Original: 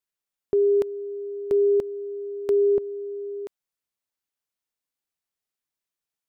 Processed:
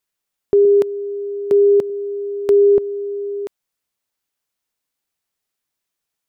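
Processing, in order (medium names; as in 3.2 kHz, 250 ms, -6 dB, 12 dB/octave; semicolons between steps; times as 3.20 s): 0.65–1.90 s: Chebyshev high-pass 150 Hz, order 2; trim +8 dB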